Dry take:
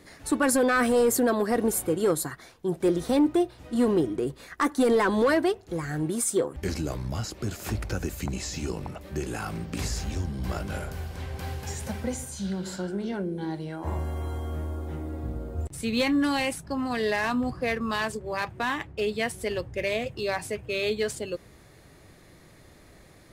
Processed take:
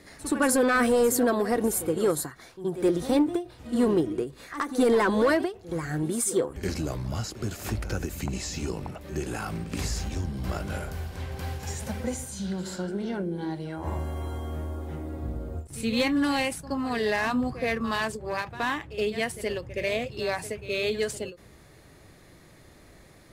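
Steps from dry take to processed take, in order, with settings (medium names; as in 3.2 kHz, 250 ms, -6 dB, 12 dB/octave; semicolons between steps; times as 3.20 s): pre-echo 72 ms -13.5 dB; endings held to a fixed fall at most 190 dB/s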